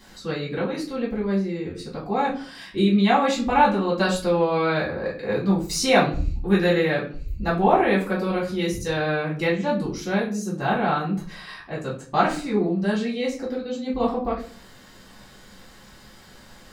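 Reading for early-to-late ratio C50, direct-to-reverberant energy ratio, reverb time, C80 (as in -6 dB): 8.5 dB, -6.5 dB, 0.45 s, 13.0 dB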